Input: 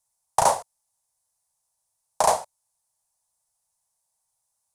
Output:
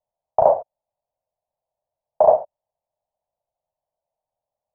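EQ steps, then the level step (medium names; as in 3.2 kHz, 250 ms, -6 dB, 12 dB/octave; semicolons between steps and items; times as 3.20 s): resonant low-pass 620 Hz, resonance Q 4.9; -1.5 dB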